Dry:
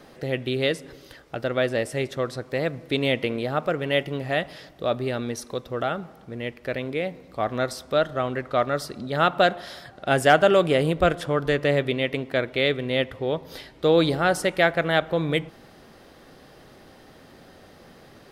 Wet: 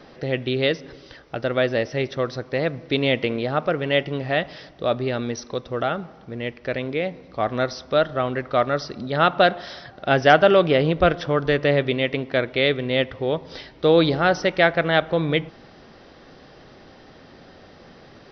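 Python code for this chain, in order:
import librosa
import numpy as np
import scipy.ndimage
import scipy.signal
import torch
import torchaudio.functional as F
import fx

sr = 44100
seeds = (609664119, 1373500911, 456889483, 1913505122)

y = fx.brickwall_lowpass(x, sr, high_hz=6100.0)
y = y * 10.0 ** (2.5 / 20.0)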